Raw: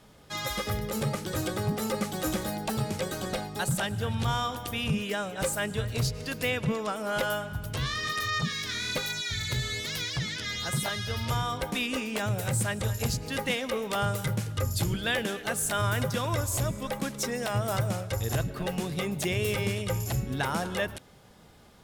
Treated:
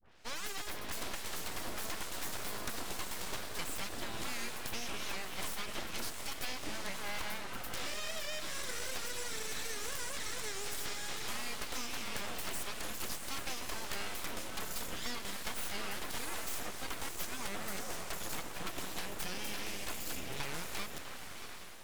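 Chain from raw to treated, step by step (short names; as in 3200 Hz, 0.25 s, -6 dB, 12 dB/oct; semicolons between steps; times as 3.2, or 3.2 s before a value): tape start at the beginning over 0.47 s; low shelf 480 Hz -10.5 dB; compressor, threshold -36 dBFS, peak gain reduction 10.5 dB; diffused feedback echo 0.679 s, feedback 41%, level -6 dB; full-wave rectifier; record warp 78 rpm, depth 100 cents; gain +1.5 dB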